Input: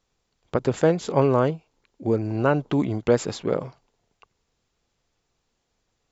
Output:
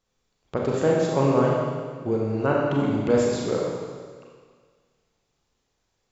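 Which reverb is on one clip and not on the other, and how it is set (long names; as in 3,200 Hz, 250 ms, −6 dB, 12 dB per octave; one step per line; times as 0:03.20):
four-comb reverb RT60 1.7 s, combs from 29 ms, DRR −3 dB
level −4.5 dB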